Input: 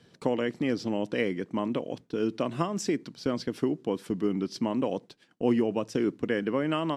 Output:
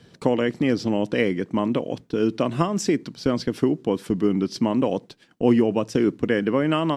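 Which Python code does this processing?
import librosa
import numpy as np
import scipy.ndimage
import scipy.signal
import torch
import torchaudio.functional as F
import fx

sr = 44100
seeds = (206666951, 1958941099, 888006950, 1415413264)

y = fx.low_shelf(x, sr, hz=99.0, db=7.5)
y = y * 10.0 ** (6.0 / 20.0)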